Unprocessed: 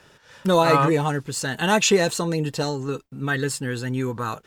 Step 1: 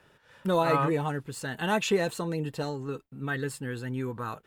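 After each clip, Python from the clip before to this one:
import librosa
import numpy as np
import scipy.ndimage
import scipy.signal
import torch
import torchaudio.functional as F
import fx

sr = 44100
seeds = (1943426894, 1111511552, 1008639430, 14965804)

y = fx.peak_eq(x, sr, hz=5900.0, db=-9.0, octaves=1.1)
y = y * librosa.db_to_amplitude(-7.0)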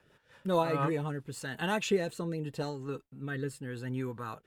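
y = fx.rotary_switch(x, sr, hz=5.0, then_hz=0.8, switch_at_s=0.33)
y = y * librosa.db_to_amplitude(-2.0)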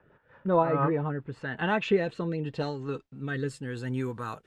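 y = fx.filter_sweep_lowpass(x, sr, from_hz=1400.0, to_hz=9200.0, start_s=0.89, end_s=4.08, q=0.97)
y = y * librosa.db_to_amplitude(4.0)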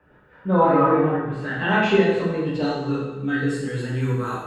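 y = fx.rev_plate(x, sr, seeds[0], rt60_s=1.1, hf_ratio=0.85, predelay_ms=0, drr_db=-7.5)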